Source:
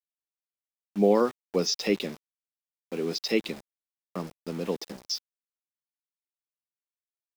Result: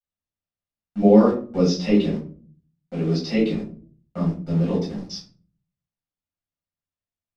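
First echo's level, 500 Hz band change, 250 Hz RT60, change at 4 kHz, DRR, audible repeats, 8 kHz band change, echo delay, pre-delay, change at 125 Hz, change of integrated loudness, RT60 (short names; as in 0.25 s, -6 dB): none, +5.0 dB, 0.70 s, -2.0 dB, -7.0 dB, none, -4.5 dB, none, 6 ms, +15.0 dB, +8.0 dB, 0.40 s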